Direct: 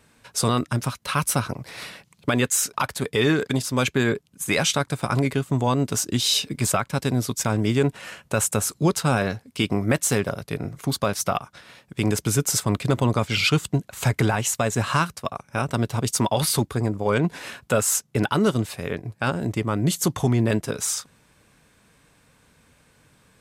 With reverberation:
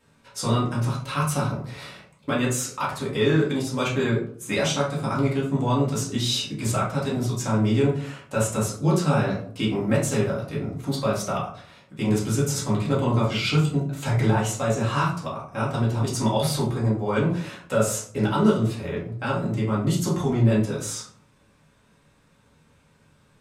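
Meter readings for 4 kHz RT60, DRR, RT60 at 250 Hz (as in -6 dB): 0.30 s, -7.0 dB, 0.65 s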